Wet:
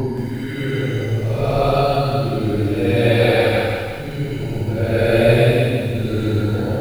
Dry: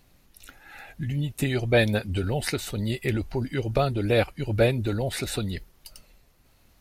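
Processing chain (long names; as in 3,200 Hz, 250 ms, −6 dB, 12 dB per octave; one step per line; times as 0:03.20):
extreme stretch with random phases 4.2×, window 0.25 s, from 0:03.39
feedback echo at a low word length 175 ms, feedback 55%, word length 8 bits, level −6.5 dB
level +5.5 dB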